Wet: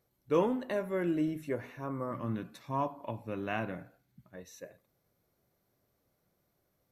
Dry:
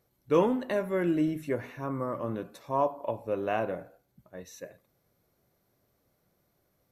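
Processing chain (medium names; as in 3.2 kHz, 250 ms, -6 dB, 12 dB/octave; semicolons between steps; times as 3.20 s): 2.11–4.36 s: graphic EQ 125/250/500/2000/4000 Hz +6/+5/-8/+5/+3 dB; trim -4 dB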